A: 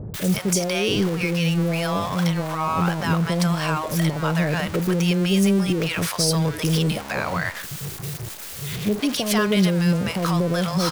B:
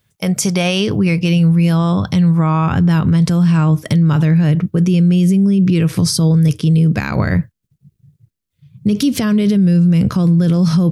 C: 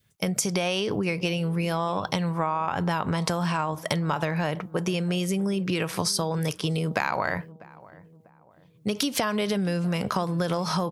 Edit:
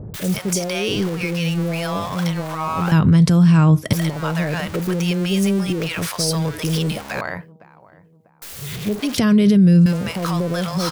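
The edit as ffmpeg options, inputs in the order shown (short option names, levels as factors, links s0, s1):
-filter_complex "[1:a]asplit=2[s0][s1];[0:a]asplit=4[s2][s3][s4][s5];[s2]atrim=end=2.922[s6];[s0]atrim=start=2.918:end=3.932[s7];[s3]atrim=start=3.928:end=7.212[s8];[2:a]atrim=start=7.208:end=8.422[s9];[s4]atrim=start=8.418:end=9.182[s10];[s1]atrim=start=9.178:end=9.862[s11];[s5]atrim=start=9.858[s12];[s6][s7]acrossfade=d=0.004:c1=hsin:c2=hsin[s13];[s13][s8]acrossfade=d=0.004:c1=hsin:c2=hsin[s14];[s14][s9]acrossfade=d=0.004:c1=hsin:c2=hsin[s15];[s15][s10]acrossfade=d=0.004:c1=hsin:c2=hsin[s16];[s16][s11]acrossfade=d=0.004:c1=hsin:c2=hsin[s17];[s17][s12]acrossfade=d=0.004:c1=hsin:c2=hsin"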